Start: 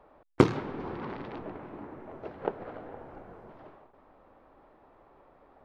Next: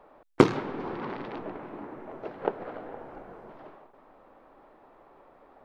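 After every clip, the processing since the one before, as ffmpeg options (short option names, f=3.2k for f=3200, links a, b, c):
-af "equalizer=f=67:t=o:w=1.7:g=-11.5,volume=3.5dB"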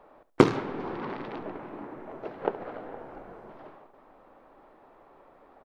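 -af "aecho=1:1:70|140:0.158|0.0333"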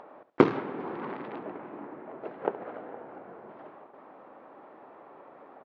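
-af "highpass=160,lowpass=2.7k,acompressor=mode=upward:threshold=-41dB:ratio=2.5,volume=-1dB"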